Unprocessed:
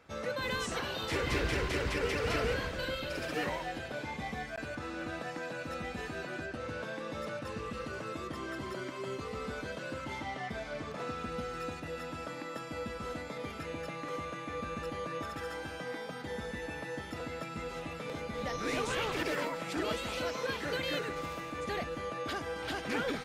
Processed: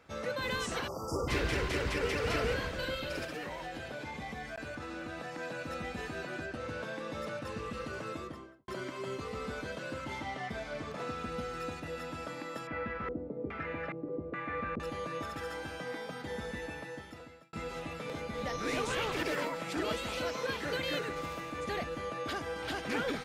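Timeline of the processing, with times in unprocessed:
0.88–1.28 spectral delete 1400–4700 Hz
3.24–5.39 compressor 4:1, threshold -37 dBFS
8.09–8.68 studio fade out
12.67–14.8 LFO low-pass square 1.2 Hz 390–1900 Hz
16.58–17.53 fade out

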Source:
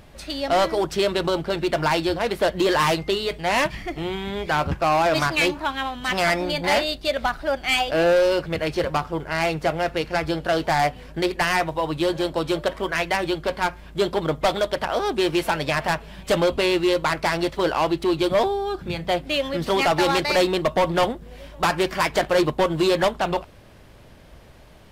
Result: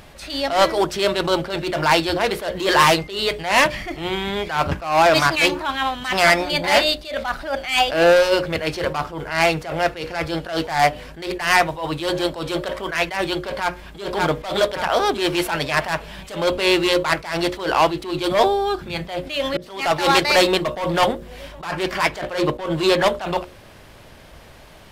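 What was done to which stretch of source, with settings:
13.36–14.05 echo throw 0.58 s, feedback 40%, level -6 dB
19.57–20.05 fade in
21.52–23.06 high shelf 5600 Hz -5 dB
whole clip: low shelf 470 Hz -5.5 dB; notches 60/120/180/240/300/360/420/480/540/600 Hz; attack slew limiter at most 110 dB/s; gain +7.5 dB

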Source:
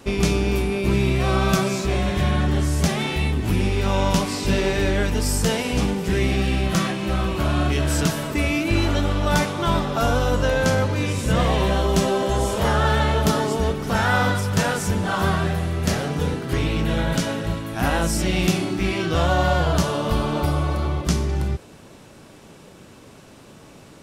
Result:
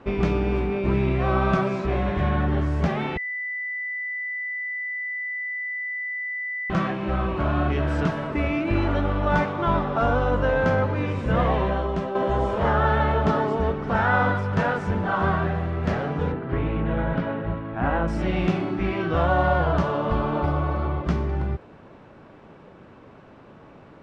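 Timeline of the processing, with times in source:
3.17–6.7 bleep 1990 Hz -23.5 dBFS
11.49–12.15 fade out, to -8.5 dB
16.32–18.08 air absorption 280 m
whole clip: LPF 1500 Hz 12 dB/oct; tilt shelf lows -3 dB, about 630 Hz

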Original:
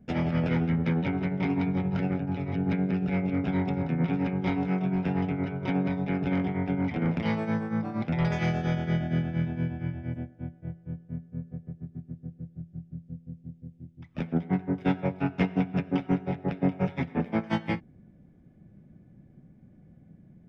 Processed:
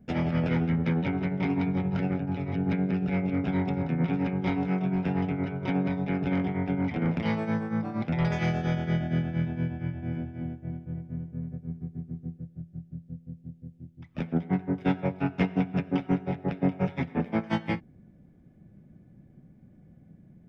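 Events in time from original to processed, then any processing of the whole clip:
9.72–12.37 feedback echo 0.304 s, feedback 23%, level -4.5 dB

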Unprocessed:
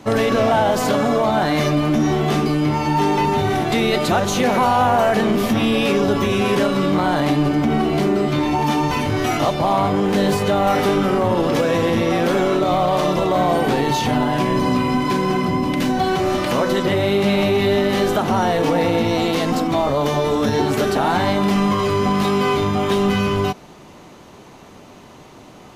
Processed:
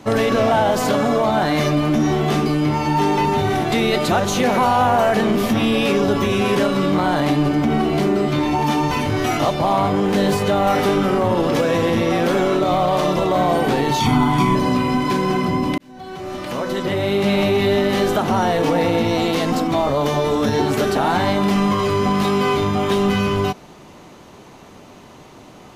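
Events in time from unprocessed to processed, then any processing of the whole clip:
14–14.55 comb 0.9 ms, depth 88%
15.78–17.36 fade in

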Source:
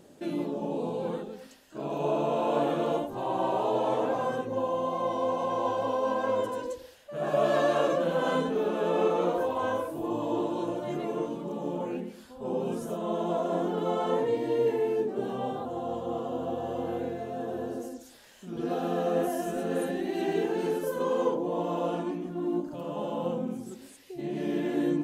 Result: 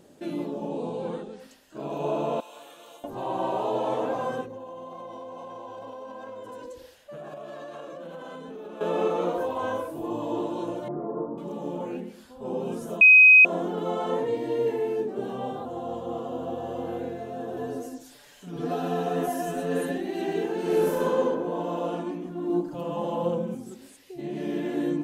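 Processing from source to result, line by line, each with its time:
0.68–1.4 brick-wall FIR low-pass 10000 Hz
2.4–3.04 differentiator
4.45–8.81 compressor 12:1, threshold -36 dBFS
10.88–11.38 steep low-pass 1300 Hz
13.01–13.45 bleep 2520 Hz -9.5 dBFS
17.56–19.98 comb 6.9 ms, depth 92%
20.62–21.03 reverb throw, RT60 2.2 s, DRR -6 dB
22.49–23.55 comb 5.9 ms, depth 83%

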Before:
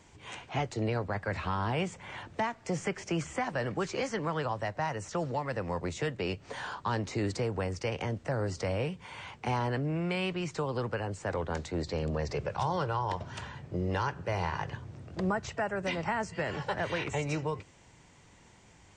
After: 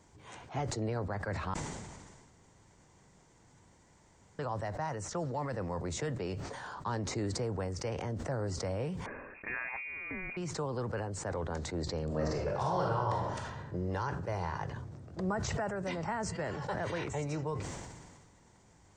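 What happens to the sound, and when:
1.54–4.39 room tone
9.06–10.37 inverted band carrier 2600 Hz
12.05–13.58 reverb throw, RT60 0.83 s, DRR -2 dB
15.28–15.68 backwards sustainer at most 20 dB/s
whole clip: bell 2700 Hz -9 dB 1 oct; sustainer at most 34 dB/s; gain -3.5 dB

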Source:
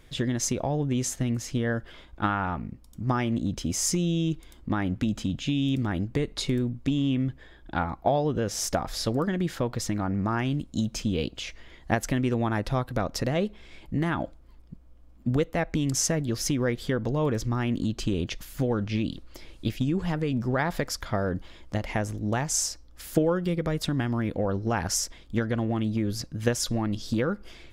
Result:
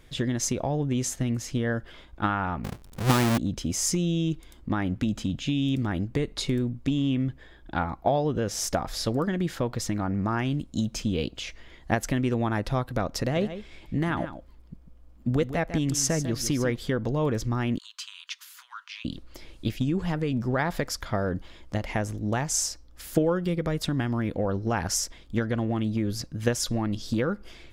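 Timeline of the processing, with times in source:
2.64–3.38 half-waves squared off
13.21–16.76 echo 0.148 s -11.5 dB
17.78–19.05 rippled Chebyshev high-pass 960 Hz, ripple 3 dB

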